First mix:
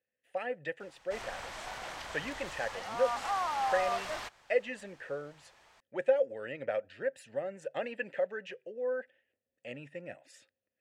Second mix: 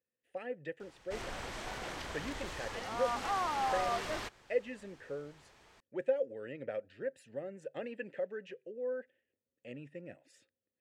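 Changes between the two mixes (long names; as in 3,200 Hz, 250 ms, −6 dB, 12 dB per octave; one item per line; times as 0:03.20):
speech −7.5 dB
master: add low shelf with overshoot 520 Hz +6.5 dB, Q 1.5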